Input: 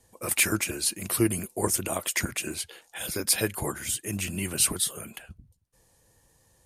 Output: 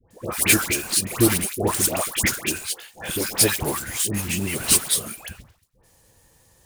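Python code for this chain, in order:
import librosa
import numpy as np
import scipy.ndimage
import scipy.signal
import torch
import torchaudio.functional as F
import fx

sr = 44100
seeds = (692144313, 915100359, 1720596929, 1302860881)

y = fx.block_float(x, sr, bits=3)
y = fx.dispersion(y, sr, late='highs', ms=108.0, hz=1100.0)
y = y * librosa.db_to_amplitude(5.5)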